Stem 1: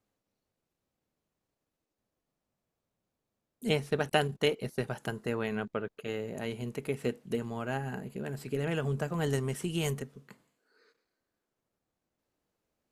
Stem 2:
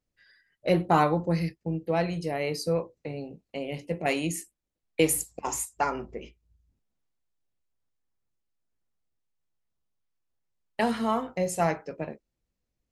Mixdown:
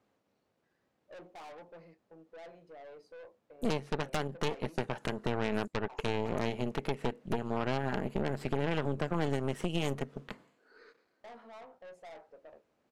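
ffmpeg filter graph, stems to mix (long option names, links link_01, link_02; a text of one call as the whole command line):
ffmpeg -i stem1.wav -i stem2.wav -filter_complex "[0:a]aemphasis=mode=reproduction:type=75fm,acompressor=threshold=-39dB:ratio=8,volume=2dB[link_01];[1:a]bandpass=frequency=650:width_type=q:width=1.6:csg=0,asoftclip=type=tanh:threshold=-34.5dB,adelay=450,volume=-19dB[link_02];[link_01][link_02]amix=inputs=2:normalize=0,highpass=frequency=210:poles=1,aeval=exprs='0.0668*(cos(1*acos(clip(val(0)/0.0668,-1,1)))-cos(1*PI/2))+0.0188*(cos(5*acos(clip(val(0)/0.0668,-1,1)))-cos(5*PI/2))+0.0299*(cos(8*acos(clip(val(0)/0.0668,-1,1)))-cos(8*PI/2))':channel_layout=same" out.wav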